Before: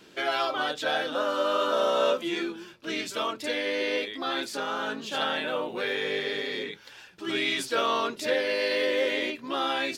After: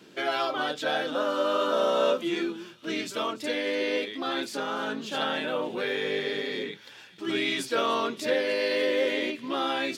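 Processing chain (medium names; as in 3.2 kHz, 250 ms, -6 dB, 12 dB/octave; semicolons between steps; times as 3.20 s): high-pass 150 Hz 12 dB/octave; bass shelf 290 Hz +9 dB; feedback echo behind a high-pass 292 ms, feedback 74%, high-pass 2.7 kHz, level -19 dB; trim -1.5 dB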